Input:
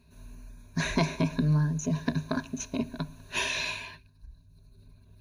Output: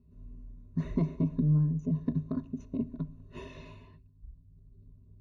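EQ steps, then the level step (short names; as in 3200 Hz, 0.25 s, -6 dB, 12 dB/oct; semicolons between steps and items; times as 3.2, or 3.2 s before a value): running mean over 55 samples; 0.0 dB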